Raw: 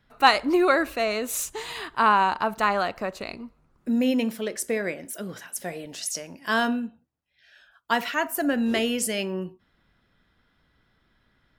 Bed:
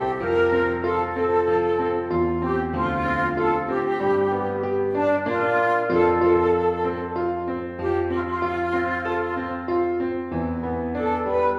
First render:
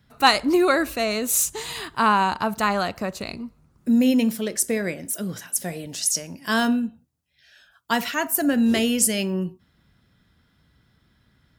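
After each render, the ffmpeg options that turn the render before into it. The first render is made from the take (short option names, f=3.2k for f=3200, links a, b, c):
-af "highpass=63,bass=f=250:g=10,treble=f=4k:g=9"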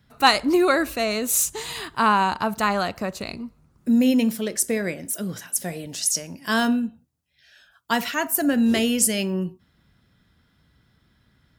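-af anull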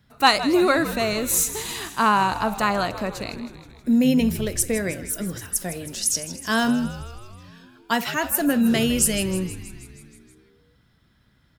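-filter_complex "[0:a]asplit=9[a][b][c][d][e][f][g][h][i];[b]adelay=159,afreqshift=-83,volume=-13.5dB[j];[c]adelay=318,afreqshift=-166,volume=-17.2dB[k];[d]adelay=477,afreqshift=-249,volume=-21dB[l];[e]adelay=636,afreqshift=-332,volume=-24.7dB[m];[f]adelay=795,afreqshift=-415,volume=-28.5dB[n];[g]adelay=954,afreqshift=-498,volume=-32.2dB[o];[h]adelay=1113,afreqshift=-581,volume=-36dB[p];[i]adelay=1272,afreqshift=-664,volume=-39.7dB[q];[a][j][k][l][m][n][o][p][q]amix=inputs=9:normalize=0"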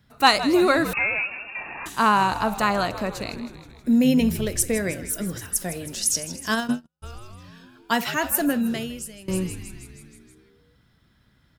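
-filter_complex "[0:a]asettb=1/sr,asplit=3[a][b][c];[a]atrim=end=0.934[d];[b]atrim=start=0.93:end=1.86,asetpts=PTS-STARTPTS,afade=t=in:d=0.004:c=qsin,afade=t=out:st=0.926:d=0.004:c=qsin,lowpass=f=2.4k:t=q:w=0.5098,lowpass=f=2.4k:t=q:w=0.6013,lowpass=f=2.4k:t=q:w=0.9,lowpass=f=2.4k:t=q:w=2.563,afreqshift=-2800[e];[c]atrim=start=1.856[f];[d][e]acrossfade=d=0.004:c1=hsin:c2=qsin[g];[g][f]acrossfade=d=0.004:c1=qsin:c2=hsin,asplit=3[h][i][j];[h]afade=t=out:st=6.54:d=0.02[k];[i]agate=range=-54dB:threshold=-20dB:ratio=16:release=100:detection=peak,afade=t=in:st=6.54:d=0.02,afade=t=out:st=7.02:d=0.02[l];[j]afade=t=in:st=7.02:d=0.02[m];[k][l][m]amix=inputs=3:normalize=0,asplit=2[n][o];[n]atrim=end=9.28,asetpts=PTS-STARTPTS,afade=t=out:st=8.4:d=0.88:c=qua:silence=0.0891251[p];[o]atrim=start=9.28,asetpts=PTS-STARTPTS,afade=t=in:d=0.004:c=hsin:silence=0.0891251[q];[p][q]concat=n=2:v=0:a=1"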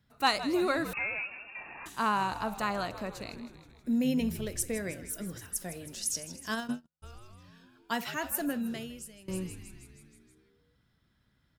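-af "volume=-10dB"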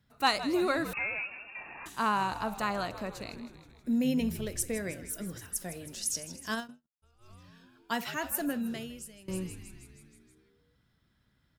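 -filter_complex "[0:a]asplit=3[a][b][c];[a]atrim=end=6.71,asetpts=PTS-STARTPTS,afade=t=out:st=6.58:d=0.13:silence=0.112202[d];[b]atrim=start=6.71:end=7.18,asetpts=PTS-STARTPTS,volume=-19dB[e];[c]atrim=start=7.18,asetpts=PTS-STARTPTS,afade=t=in:d=0.13:silence=0.112202[f];[d][e][f]concat=n=3:v=0:a=1"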